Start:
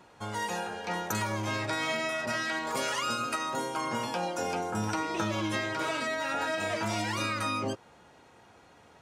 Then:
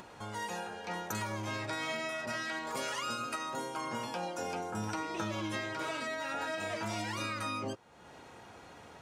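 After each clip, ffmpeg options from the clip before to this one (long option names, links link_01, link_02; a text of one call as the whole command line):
ffmpeg -i in.wav -af "acompressor=mode=upward:threshold=-36dB:ratio=2.5,volume=-5.5dB" out.wav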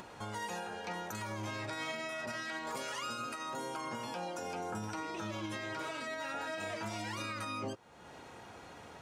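ffmpeg -i in.wav -af "alimiter=level_in=7.5dB:limit=-24dB:level=0:latency=1:release=154,volume=-7.5dB,volume=1dB" out.wav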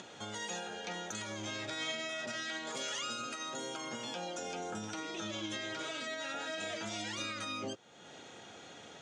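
ffmpeg -i in.wav -af "highpass=140,equalizer=frequency=1000:width_type=q:width=4:gain=-9,equalizer=frequency=3400:width_type=q:width=4:gain=10,equalizer=frequency=6600:width_type=q:width=4:gain=9,lowpass=frequency=8500:width=0.5412,lowpass=frequency=8500:width=1.3066" out.wav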